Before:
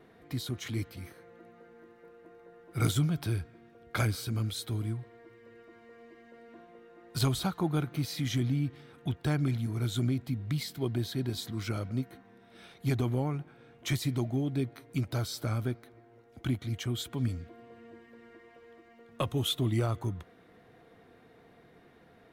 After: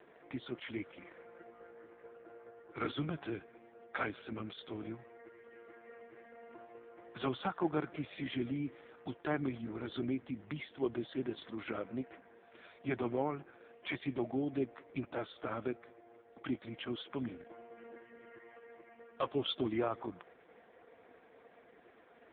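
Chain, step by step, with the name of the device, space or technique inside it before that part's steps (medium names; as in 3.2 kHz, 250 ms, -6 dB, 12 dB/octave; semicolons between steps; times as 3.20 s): telephone (band-pass 370–3200 Hz; saturation -23.5 dBFS, distortion -23 dB; trim +3.5 dB; AMR-NB 4.75 kbps 8 kHz)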